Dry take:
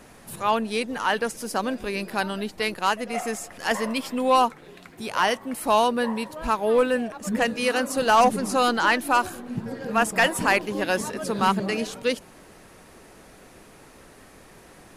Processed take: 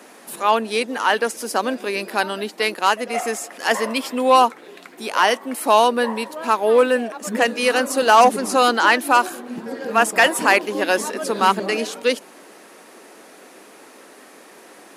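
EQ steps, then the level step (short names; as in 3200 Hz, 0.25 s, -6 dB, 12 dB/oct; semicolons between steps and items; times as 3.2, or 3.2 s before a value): HPF 250 Hz 24 dB/oct; +5.5 dB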